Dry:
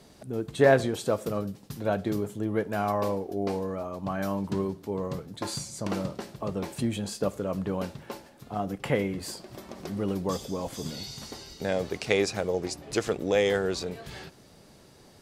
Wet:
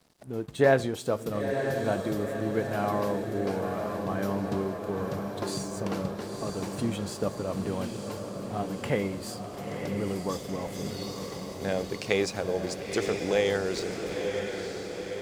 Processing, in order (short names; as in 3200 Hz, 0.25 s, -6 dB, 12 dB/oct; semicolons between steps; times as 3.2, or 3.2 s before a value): crossover distortion -52.5 dBFS; diffused feedback echo 0.952 s, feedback 63%, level -5.5 dB; gain -1.5 dB